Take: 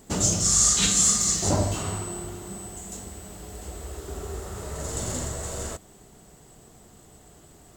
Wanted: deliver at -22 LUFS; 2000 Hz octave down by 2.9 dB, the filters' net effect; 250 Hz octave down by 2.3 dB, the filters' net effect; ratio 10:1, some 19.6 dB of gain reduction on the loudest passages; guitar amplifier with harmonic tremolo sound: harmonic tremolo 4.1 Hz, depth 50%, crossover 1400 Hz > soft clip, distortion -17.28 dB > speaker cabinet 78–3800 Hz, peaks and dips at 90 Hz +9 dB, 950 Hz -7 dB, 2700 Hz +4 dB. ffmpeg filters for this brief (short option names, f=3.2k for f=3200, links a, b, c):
-filter_complex "[0:a]equalizer=f=250:t=o:g=-3.5,equalizer=f=2k:t=o:g=-6,acompressor=threshold=-37dB:ratio=10,acrossover=split=1400[a][b];[a]aeval=exprs='val(0)*(1-0.5/2+0.5/2*cos(2*PI*4.1*n/s))':c=same[c];[b]aeval=exprs='val(0)*(1-0.5/2-0.5/2*cos(2*PI*4.1*n/s))':c=same[d];[c][d]amix=inputs=2:normalize=0,asoftclip=threshold=-36.5dB,highpass=78,equalizer=f=90:t=q:w=4:g=9,equalizer=f=950:t=q:w=4:g=-7,equalizer=f=2.7k:t=q:w=4:g=4,lowpass=f=3.8k:w=0.5412,lowpass=f=3.8k:w=1.3066,volume=26.5dB"